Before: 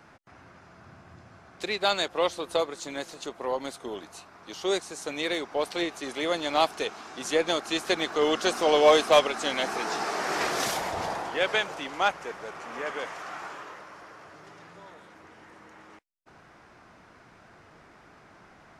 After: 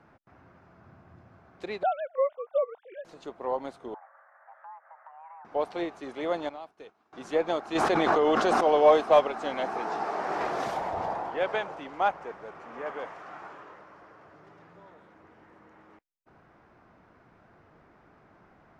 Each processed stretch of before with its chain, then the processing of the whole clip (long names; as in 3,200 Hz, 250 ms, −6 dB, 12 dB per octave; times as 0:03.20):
0:01.83–0:03.05: three sine waves on the formant tracks + high-frequency loss of the air 320 metres
0:03.94–0:05.45: Butterworth low-pass 1,400 Hz + downward compressor 5 to 1, threshold −41 dBFS + frequency shifter +470 Hz
0:06.49–0:07.13: downward expander −31 dBFS + downward compressor 2.5 to 1, threshold −44 dBFS
0:07.75–0:08.61: parametric band 12,000 Hz −3 dB 0.25 octaves + envelope flattener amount 100%
whole clip: low-pass filter 1,100 Hz 6 dB per octave; dynamic equaliser 800 Hz, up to +6 dB, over −41 dBFS, Q 1.3; level −2.5 dB